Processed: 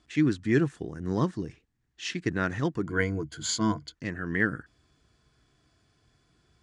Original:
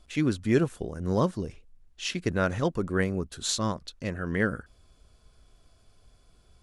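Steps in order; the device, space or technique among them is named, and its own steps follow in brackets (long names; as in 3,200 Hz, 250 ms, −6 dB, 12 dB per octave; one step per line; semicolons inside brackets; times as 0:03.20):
car door speaker (loudspeaker in its box 80–8,200 Hz, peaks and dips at 140 Hz +6 dB, 310 Hz +7 dB, 560 Hz −8 dB, 1,800 Hz +9 dB)
0:02.85–0:03.95: EQ curve with evenly spaced ripples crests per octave 1.8, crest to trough 14 dB
level −3 dB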